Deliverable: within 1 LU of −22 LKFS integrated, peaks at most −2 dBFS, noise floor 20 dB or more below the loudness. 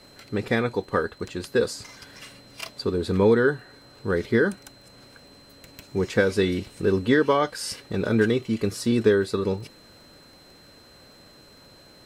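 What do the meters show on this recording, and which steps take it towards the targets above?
crackle rate 29 per second; interfering tone 4,100 Hz; level of the tone −53 dBFS; integrated loudness −24.0 LKFS; sample peak −6.5 dBFS; target loudness −22.0 LKFS
→ click removal
notch filter 4,100 Hz, Q 30
level +2 dB

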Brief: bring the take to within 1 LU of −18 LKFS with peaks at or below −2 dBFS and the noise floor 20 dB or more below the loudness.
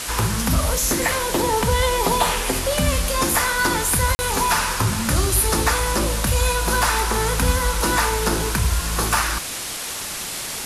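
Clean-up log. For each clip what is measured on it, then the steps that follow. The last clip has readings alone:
number of dropouts 1; longest dropout 40 ms; background noise floor −29 dBFS; target noise floor −40 dBFS; integrated loudness −20.0 LKFS; sample peak −5.0 dBFS; target loudness −18.0 LKFS
→ repair the gap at 0:04.15, 40 ms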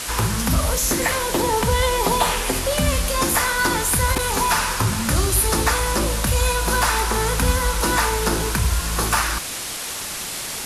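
number of dropouts 0; background noise floor −29 dBFS; target noise floor −40 dBFS
→ noise reduction from a noise print 11 dB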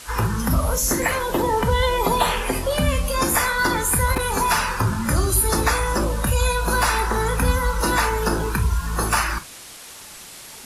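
background noise floor −40 dBFS; target noise floor −41 dBFS
→ noise reduction from a noise print 6 dB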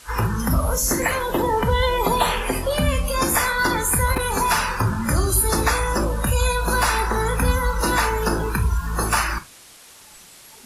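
background noise floor −46 dBFS; integrated loudness −21.0 LKFS; sample peak −6.0 dBFS; target loudness −18.0 LKFS
→ level +3 dB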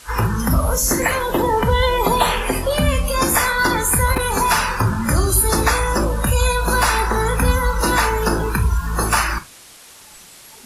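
integrated loudness −18.0 LKFS; sample peak −3.0 dBFS; background noise floor −43 dBFS

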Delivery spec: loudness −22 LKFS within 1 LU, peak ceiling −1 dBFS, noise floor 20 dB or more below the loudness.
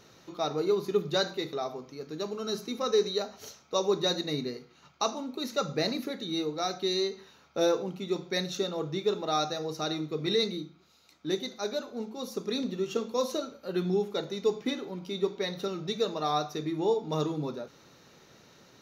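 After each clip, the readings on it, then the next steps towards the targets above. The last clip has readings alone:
integrated loudness −31.0 LKFS; sample peak −15.5 dBFS; target loudness −22.0 LKFS
→ level +9 dB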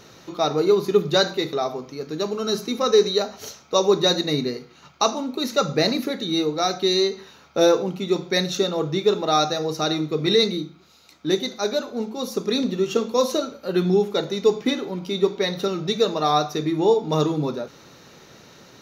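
integrated loudness −22.0 LKFS; sample peak −6.5 dBFS; background noise floor −50 dBFS

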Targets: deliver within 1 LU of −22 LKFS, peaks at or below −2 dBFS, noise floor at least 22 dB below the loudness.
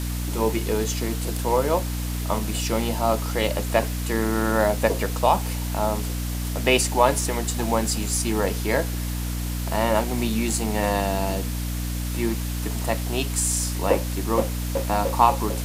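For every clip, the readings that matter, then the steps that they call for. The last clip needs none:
mains hum 60 Hz; hum harmonics up to 300 Hz; level of the hum −25 dBFS; background noise floor −28 dBFS; target noise floor −46 dBFS; integrated loudness −24.0 LKFS; sample peak −3.0 dBFS; target loudness −22.0 LKFS
→ hum removal 60 Hz, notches 5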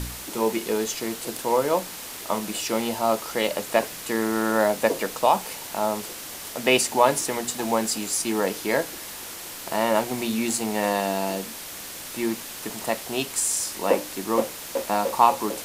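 mains hum none found; background noise floor −37 dBFS; target noise floor −47 dBFS
→ broadband denoise 10 dB, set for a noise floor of −37 dBFS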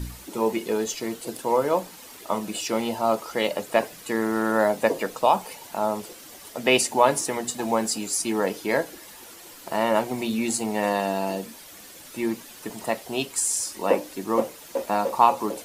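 background noise floor −45 dBFS; target noise floor −47 dBFS
→ broadband denoise 6 dB, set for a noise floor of −45 dBFS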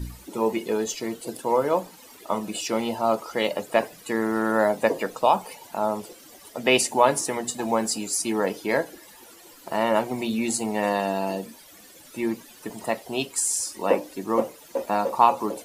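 background noise floor −49 dBFS; integrated loudness −25.0 LKFS; sample peak −3.5 dBFS; target loudness −22.0 LKFS
→ level +3 dB
brickwall limiter −2 dBFS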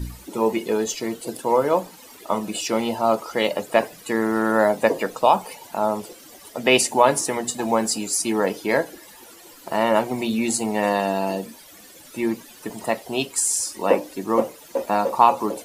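integrated loudness −22.0 LKFS; sample peak −2.0 dBFS; background noise floor −46 dBFS

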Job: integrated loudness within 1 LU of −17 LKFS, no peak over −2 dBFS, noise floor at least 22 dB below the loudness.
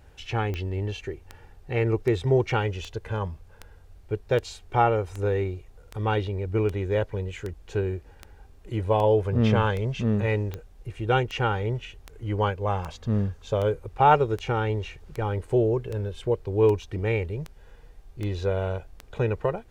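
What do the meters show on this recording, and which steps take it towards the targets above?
number of clicks 25; integrated loudness −26.5 LKFS; sample peak −7.0 dBFS; target loudness −17.0 LKFS
→ click removal
level +9.5 dB
brickwall limiter −2 dBFS

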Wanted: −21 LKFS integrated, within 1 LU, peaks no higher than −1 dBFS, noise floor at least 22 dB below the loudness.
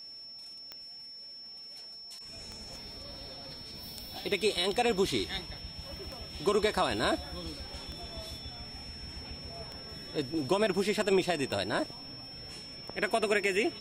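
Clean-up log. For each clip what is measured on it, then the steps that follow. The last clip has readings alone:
number of clicks 8; interfering tone 5,400 Hz; level of the tone −44 dBFS; integrated loudness −33.5 LKFS; sample peak −15.0 dBFS; target loudness −21.0 LKFS
→ click removal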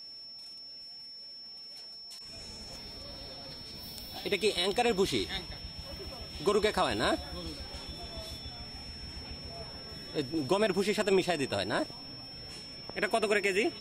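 number of clicks 0; interfering tone 5,400 Hz; level of the tone −44 dBFS
→ notch filter 5,400 Hz, Q 30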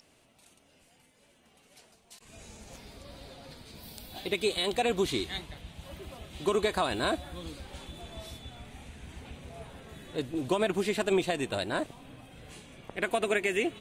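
interfering tone none found; integrated loudness −31.0 LKFS; sample peak −15.0 dBFS; target loudness −21.0 LKFS
→ level +10 dB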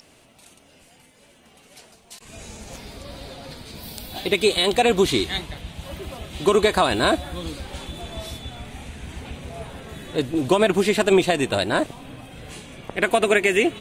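integrated loudness −21.0 LKFS; sample peak −5.0 dBFS; background noise floor −54 dBFS

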